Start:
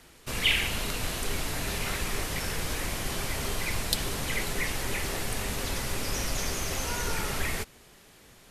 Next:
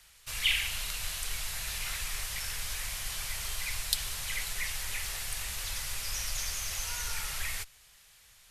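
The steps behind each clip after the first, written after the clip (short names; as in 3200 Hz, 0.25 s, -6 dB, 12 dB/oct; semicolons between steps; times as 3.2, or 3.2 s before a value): passive tone stack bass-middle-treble 10-0-10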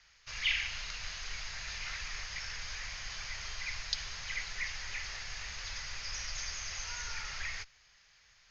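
rippled Chebyshev low-pass 6700 Hz, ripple 6 dB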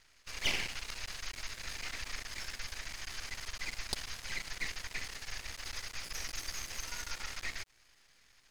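half-wave rectifier; gain +2.5 dB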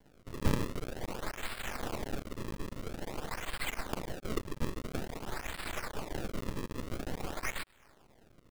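decimation with a swept rate 34×, swing 160% 0.49 Hz; gain +3.5 dB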